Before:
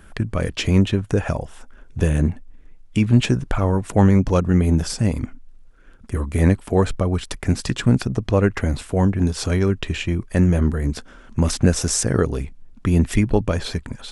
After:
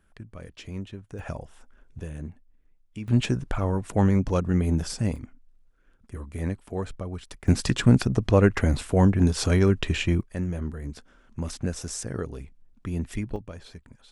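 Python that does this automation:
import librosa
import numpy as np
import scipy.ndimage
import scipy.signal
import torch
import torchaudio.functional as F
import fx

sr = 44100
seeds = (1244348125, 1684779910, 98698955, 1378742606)

y = fx.gain(x, sr, db=fx.steps((0.0, -19.5), (1.19, -11.0), (1.99, -18.0), (3.08, -6.5), (5.16, -13.5), (7.48, -1.0), (10.21, -13.0), (13.36, -19.0)))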